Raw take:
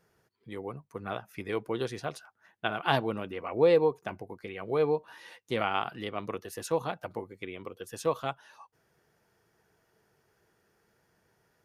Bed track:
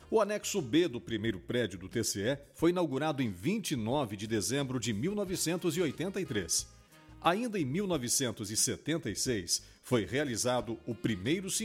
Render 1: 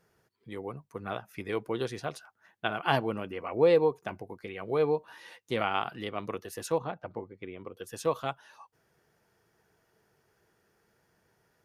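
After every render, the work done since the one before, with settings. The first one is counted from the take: 2.73–3.67 Butterworth band-stop 3700 Hz, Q 6.4; 6.78–7.77 tape spacing loss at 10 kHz 26 dB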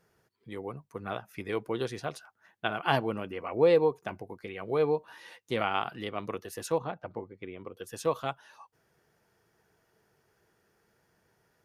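nothing audible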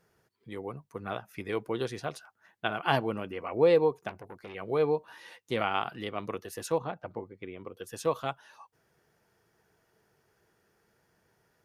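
4.09–4.55 core saturation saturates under 1600 Hz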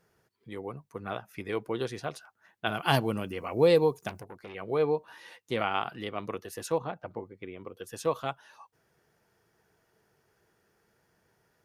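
2.67–4.24 tone controls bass +6 dB, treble +14 dB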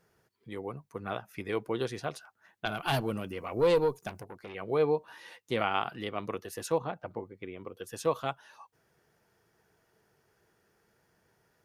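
2.65–4.19 tube stage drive 16 dB, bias 0.5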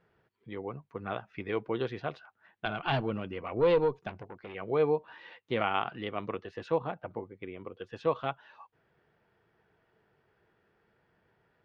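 LPF 3500 Hz 24 dB/oct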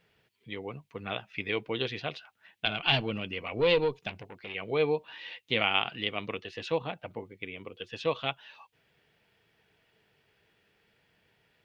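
resonant high shelf 1900 Hz +10 dB, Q 1.5; notch 360 Hz, Q 12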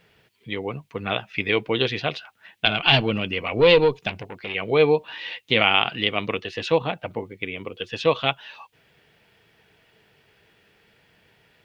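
gain +9.5 dB; limiter -3 dBFS, peak gain reduction 2.5 dB

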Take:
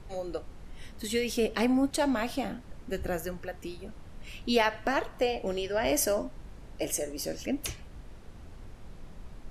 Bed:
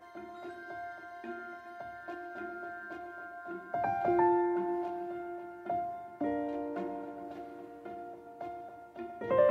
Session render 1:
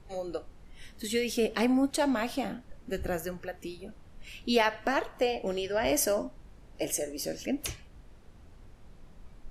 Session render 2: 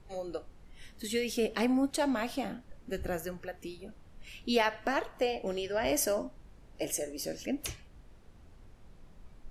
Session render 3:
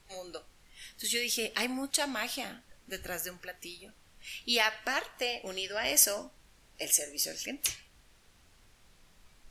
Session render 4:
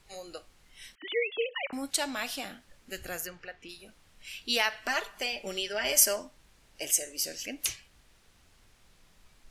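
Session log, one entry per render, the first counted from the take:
noise print and reduce 6 dB
gain -2.5 dB
tilt shelf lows -9.5 dB, about 1200 Hz
0.95–1.73 sine-wave speech; 3.26–3.68 LPF 5100 Hz -> 2900 Hz; 4.87–6.16 comb 5 ms

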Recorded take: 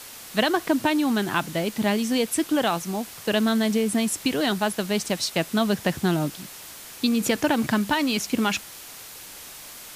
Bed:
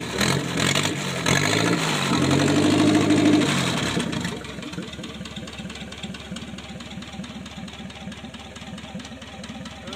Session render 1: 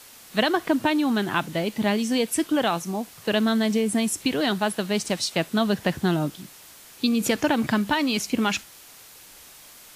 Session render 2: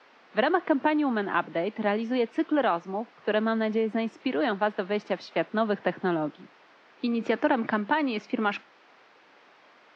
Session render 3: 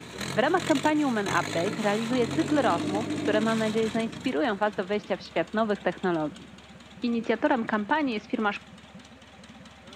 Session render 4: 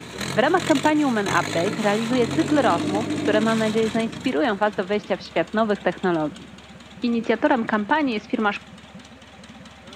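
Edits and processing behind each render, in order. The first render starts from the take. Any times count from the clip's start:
noise print and reduce 6 dB
elliptic band-pass 110–5300 Hz, stop band 40 dB; three-band isolator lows -23 dB, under 220 Hz, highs -22 dB, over 2500 Hz
add bed -12.5 dB
gain +5 dB

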